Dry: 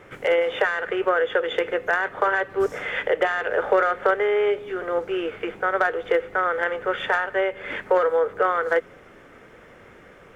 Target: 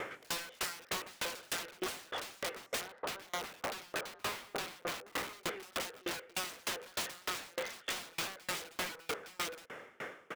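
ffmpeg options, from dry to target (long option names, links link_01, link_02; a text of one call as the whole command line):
ffmpeg -i in.wav -filter_complex "[0:a]aecho=1:1:863:0.631,acontrast=68,lowshelf=frequency=320:gain=-7.5,acrusher=bits=8:mode=log:mix=0:aa=0.000001,alimiter=limit=-12dB:level=0:latency=1:release=414,asettb=1/sr,asplit=3[link_01][link_02][link_03];[link_01]atrim=end=2.814[link_04];[link_02]atrim=start=2.81:end=5.33,asetpts=PTS-STARTPTS,afade=type=in:duration=0.004:curve=qsin,afade=type=out:start_time=2.516:duration=0.004:curve=qsin,lowpass=frequency=1300:width=0.5412,lowpass=frequency=1300:width=1.3066[link_05];[link_03]atrim=start=5.326[link_06];[link_04][link_05]acrossfade=duration=0.004:curve1=hsin:curve2=qsin[link_07];[link_07][link_06]acrossfade=duration=0.004:curve1=qsin:curve2=hsin,aeval=exprs='(mod(12.6*val(0)+1,2)-1)/12.6':channel_layout=same,highpass=frequency=230:poles=1,asoftclip=type=tanh:threshold=-29.5dB,acompressor=threshold=-43dB:ratio=2.5,aeval=exprs='val(0)*pow(10,-31*if(lt(mod(3.3*n/s,1),2*abs(3.3)/1000),1-mod(3.3*n/s,1)/(2*abs(3.3)/1000),(mod(3.3*n/s,1)-2*abs(3.3)/1000)/(1-2*abs(3.3)/1000))/20)':channel_layout=same,volume=7.5dB" out.wav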